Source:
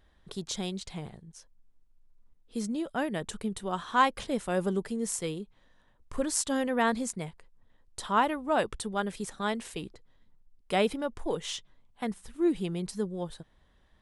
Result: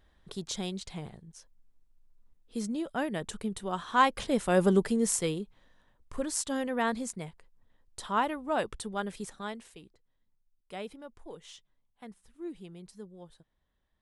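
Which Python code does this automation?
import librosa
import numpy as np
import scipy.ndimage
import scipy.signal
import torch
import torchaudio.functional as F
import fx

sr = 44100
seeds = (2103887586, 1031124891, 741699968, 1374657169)

y = fx.gain(x, sr, db=fx.line((3.86, -1.0), (4.78, 6.5), (6.16, -3.0), (9.23, -3.0), (9.83, -14.0)))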